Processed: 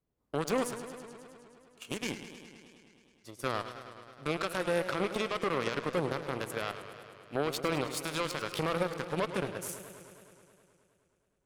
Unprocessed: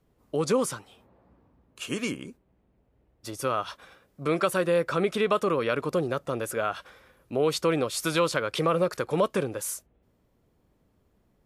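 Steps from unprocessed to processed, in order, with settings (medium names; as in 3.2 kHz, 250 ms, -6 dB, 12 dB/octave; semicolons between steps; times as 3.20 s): peak limiter -20.5 dBFS, peak gain reduction 11 dB; Chebyshev shaper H 3 -11 dB, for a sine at -20.5 dBFS; modulated delay 105 ms, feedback 77%, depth 129 cents, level -12 dB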